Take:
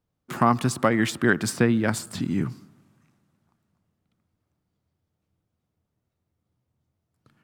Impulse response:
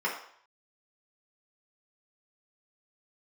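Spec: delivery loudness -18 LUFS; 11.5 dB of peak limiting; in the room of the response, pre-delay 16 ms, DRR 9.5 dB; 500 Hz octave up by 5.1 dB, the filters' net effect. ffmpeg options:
-filter_complex "[0:a]equalizer=f=500:t=o:g=6.5,alimiter=limit=-14.5dB:level=0:latency=1,asplit=2[a][b];[1:a]atrim=start_sample=2205,adelay=16[c];[b][c]afir=irnorm=-1:irlink=0,volume=-19dB[d];[a][d]amix=inputs=2:normalize=0,volume=8.5dB"

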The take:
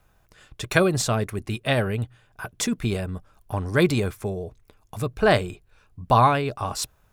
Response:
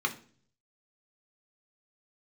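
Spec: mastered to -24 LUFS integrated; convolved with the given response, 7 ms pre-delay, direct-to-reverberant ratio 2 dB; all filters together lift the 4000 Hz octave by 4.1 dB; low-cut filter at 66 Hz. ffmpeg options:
-filter_complex "[0:a]highpass=66,equalizer=f=4k:t=o:g=5,asplit=2[a][b];[1:a]atrim=start_sample=2205,adelay=7[c];[b][c]afir=irnorm=-1:irlink=0,volume=-10dB[d];[a][d]amix=inputs=2:normalize=0,volume=-2dB"

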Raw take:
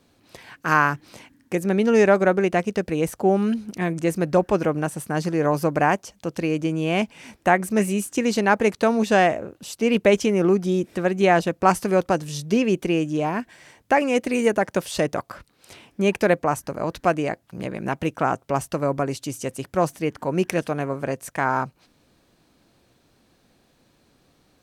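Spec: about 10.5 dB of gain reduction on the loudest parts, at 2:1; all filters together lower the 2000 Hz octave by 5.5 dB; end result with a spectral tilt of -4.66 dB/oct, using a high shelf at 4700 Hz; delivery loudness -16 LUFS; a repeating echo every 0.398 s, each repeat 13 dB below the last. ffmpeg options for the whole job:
-af "equalizer=f=2k:t=o:g=-6,highshelf=f=4.7k:g=-8.5,acompressor=threshold=-33dB:ratio=2,aecho=1:1:398|796|1194:0.224|0.0493|0.0108,volume=15.5dB"

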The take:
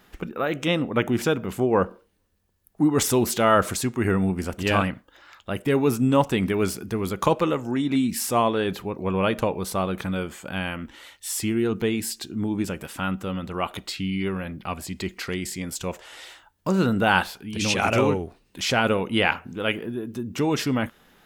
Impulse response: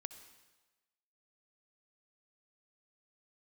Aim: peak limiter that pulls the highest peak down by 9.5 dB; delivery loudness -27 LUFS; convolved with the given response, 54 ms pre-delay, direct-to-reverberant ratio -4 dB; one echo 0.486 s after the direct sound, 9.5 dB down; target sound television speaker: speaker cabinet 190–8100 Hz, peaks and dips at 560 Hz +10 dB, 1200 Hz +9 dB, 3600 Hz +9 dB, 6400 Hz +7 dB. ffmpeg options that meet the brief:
-filter_complex "[0:a]alimiter=limit=-14dB:level=0:latency=1,aecho=1:1:486:0.335,asplit=2[a][b];[1:a]atrim=start_sample=2205,adelay=54[c];[b][c]afir=irnorm=-1:irlink=0,volume=8dB[d];[a][d]amix=inputs=2:normalize=0,highpass=f=190:w=0.5412,highpass=f=190:w=1.3066,equalizer=f=560:t=q:w=4:g=10,equalizer=f=1.2k:t=q:w=4:g=9,equalizer=f=3.6k:t=q:w=4:g=9,equalizer=f=6.4k:t=q:w=4:g=7,lowpass=f=8.1k:w=0.5412,lowpass=f=8.1k:w=1.3066,volume=-9dB"

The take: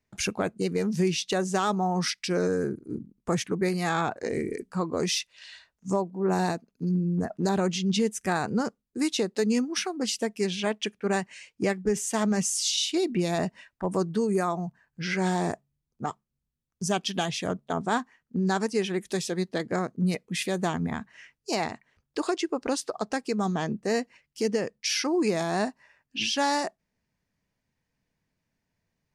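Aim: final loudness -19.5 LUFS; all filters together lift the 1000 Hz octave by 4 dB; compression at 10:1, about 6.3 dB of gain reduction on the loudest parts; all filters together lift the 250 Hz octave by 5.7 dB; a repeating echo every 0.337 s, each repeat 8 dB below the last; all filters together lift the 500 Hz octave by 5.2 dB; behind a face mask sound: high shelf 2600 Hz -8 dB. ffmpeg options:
-af "equalizer=f=250:t=o:g=7,equalizer=f=500:t=o:g=3.5,equalizer=f=1k:t=o:g=4.5,acompressor=threshold=-21dB:ratio=10,highshelf=f=2.6k:g=-8,aecho=1:1:337|674|1011|1348|1685:0.398|0.159|0.0637|0.0255|0.0102,volume=8dB"

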